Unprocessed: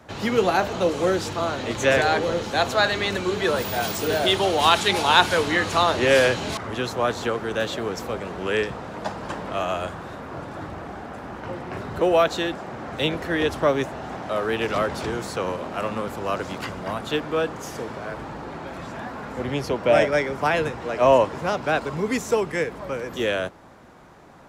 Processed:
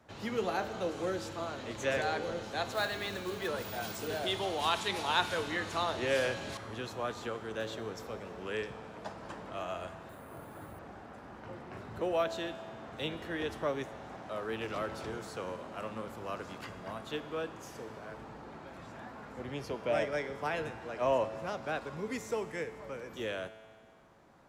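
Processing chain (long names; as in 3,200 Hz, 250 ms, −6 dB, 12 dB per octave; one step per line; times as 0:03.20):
0:02.73–0:03.48: floating-point word with a short mantissa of 2 bits
tuned comb filter 110 Hz, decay 1.9 s, mix 70%
0:10.09–0:10.79: bad sample-rate conversion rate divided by 4×, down filtered, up hold
level −3.5 dB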